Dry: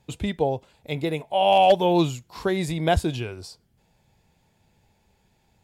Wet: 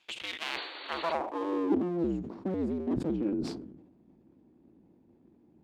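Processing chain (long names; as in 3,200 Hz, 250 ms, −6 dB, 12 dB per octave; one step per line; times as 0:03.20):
sub-harmonics by changed cycles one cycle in 2, inverted
parametric band 340 Hz +10 dB 0.34 octaves
reversed playback
downward compressor 16 to 1, threshold −29 dBFS, peak gain reduction 20.5 dB
reversed playback
band-pass filter sweep 2,900 Hz → 240 Hz, 0:00.46–0:01.89
sound drawn into the spectrogram noise, 0:00.45–0:01.13, 270–4,600 Hz −53 dBFS
level that may fall only so fast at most 59 dB per second
level +9 dB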